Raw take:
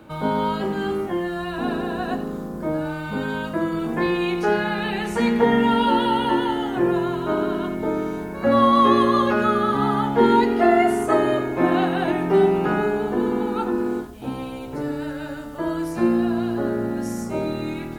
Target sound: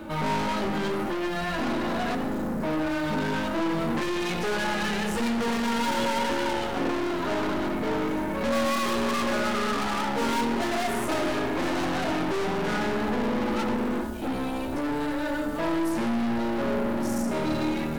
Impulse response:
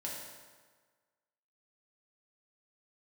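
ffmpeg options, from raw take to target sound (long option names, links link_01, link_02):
-filter_complex "[0:a]flanger=delay=3.3:depth=1.1:regen=-32:speed=1.7:shape=sinusoidal,aeval=exprs='(tanh(70.8*val(0)+0.4)-tanh(0.4))/70.8':channel_layout=same,asplit=2[link_01][link_02];[1:a]atrim=start_sample=2205[link_03];[link_02][link_03]afir=irnorm=-1:irlink=0,volume=-5.5dB[link_04];[link_01][link_04]amix=inputs=2:normalize=0,volume=8.5dB"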